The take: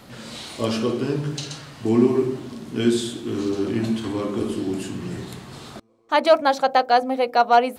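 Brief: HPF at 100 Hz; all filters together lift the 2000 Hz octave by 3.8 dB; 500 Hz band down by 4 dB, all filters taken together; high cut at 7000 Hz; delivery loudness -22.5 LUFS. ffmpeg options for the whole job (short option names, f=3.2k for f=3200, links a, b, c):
-af "highpass=100,lowpass=7k,equalizer=f=500:t=o:g=-6,equalizer=f=2k:t=o:g=5.5,volume=1.5dB"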